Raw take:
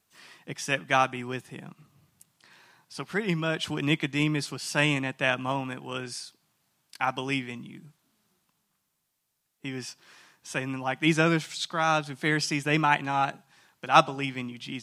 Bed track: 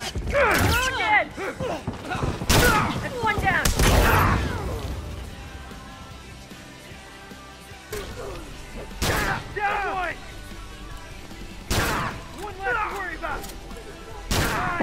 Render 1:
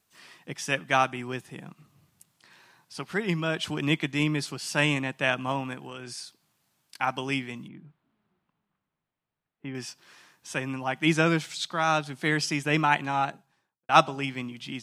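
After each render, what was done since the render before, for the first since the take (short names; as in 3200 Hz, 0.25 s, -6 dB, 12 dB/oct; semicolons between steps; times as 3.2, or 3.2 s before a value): 5.74–6.18 compressor, threshold -35 dBFS; 7.68–9.75 air absorption 490 m; 13.1–13.89 studio fade out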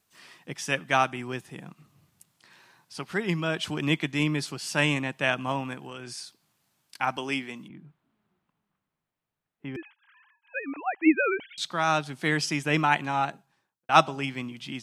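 7.17–7.7 HPF 200 Hz; 9.76–11.58 sine-wave speech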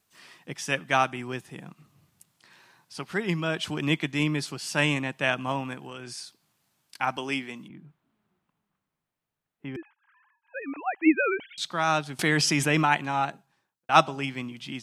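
9.76–10.62 LPF 1500 Hz; 12.19–12.86 fast leveller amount 70%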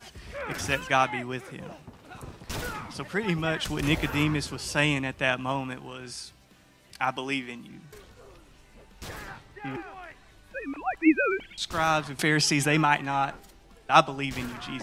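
add bed track -16.5 dB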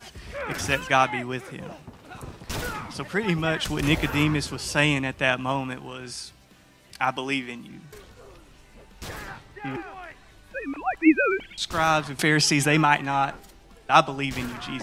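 gain +3 dB; limiter -3 dBFS, peak gain reduction 2.5 dB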